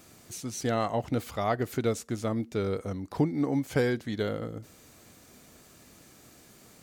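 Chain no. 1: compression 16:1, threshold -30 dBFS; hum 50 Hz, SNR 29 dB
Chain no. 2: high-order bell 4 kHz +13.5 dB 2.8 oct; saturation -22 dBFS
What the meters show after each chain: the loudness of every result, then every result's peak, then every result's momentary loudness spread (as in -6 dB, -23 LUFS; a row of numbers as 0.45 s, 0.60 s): -36.5 LUFS, -30.0 LUFS; -20.0 dBFS, -22.0 dBFS; 18 LU, 15 LU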